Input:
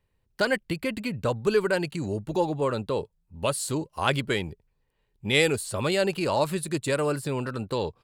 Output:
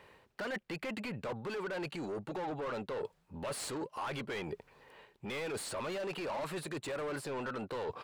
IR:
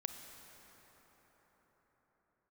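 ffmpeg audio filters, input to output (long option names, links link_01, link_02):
-filter_complex "[0:a]asplit=2[link_01][link_02];[link_02]highpass=frequency=720:poles=1,volume=32dB,asoftclip=type=tanh:threshold=-7dB[link_03];[link_01][link_03]amix=inputs=2:normalize=0,lowpass=frequency=1300:poles=1,volume=-6dB,alimiter=limit=-20dB:level=0:latency=1:release=248,areverse,acompressor=threshold=-40dB:ratio=5,areverse,lowshelf=frequency=220:gain=-6.5,volume=2.5dB"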